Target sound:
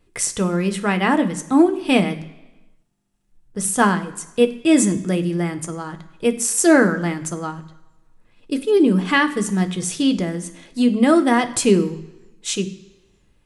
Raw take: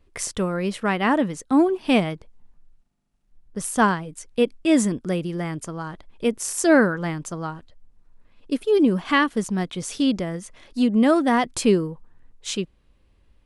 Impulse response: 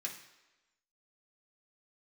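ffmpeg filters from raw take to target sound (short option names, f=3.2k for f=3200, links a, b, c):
-filter_complex "[0:a]asplit=2[a][b];[b]equalizer=f=10k:w=0.5:g=8.5[c];[1:a]atrim=start_sample=2205,lowshelf=f=260:g=11.5[d];[c][d]afir=irnorm=-1:irlink=0,volume=-4dB[e];[a][e]amix=inputs=2:normalize=0"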